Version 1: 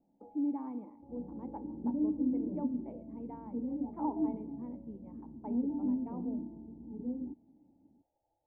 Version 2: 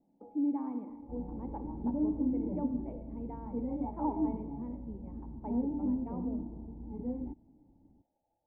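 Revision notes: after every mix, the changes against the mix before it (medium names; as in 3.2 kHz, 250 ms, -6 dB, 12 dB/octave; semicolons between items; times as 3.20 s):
speech: send +10.0 dB; second sound: remove band-pass filter 270 Hz, Q 1.2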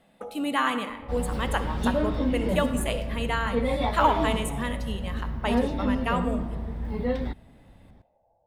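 master: remove cascade formant filter u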